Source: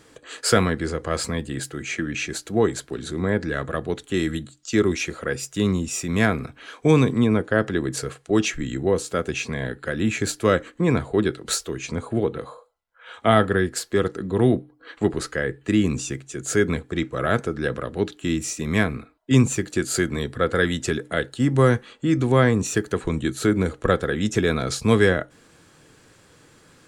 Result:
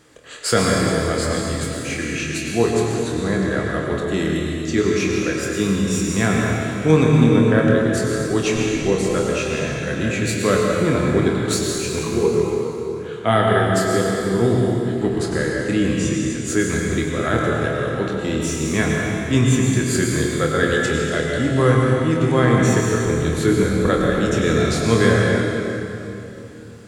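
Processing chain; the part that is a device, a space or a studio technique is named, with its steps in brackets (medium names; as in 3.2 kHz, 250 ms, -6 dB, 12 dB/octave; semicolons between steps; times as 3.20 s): 11.98–12.44 s: rippled EQ curve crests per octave 0.78, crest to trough 13 dB; tunnel (flutter echo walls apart 4.4 m, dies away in 0.24 s; reverberation RT60 3.0 s, pre-delay 93 ms, DRR -1 dB); trim -1 dB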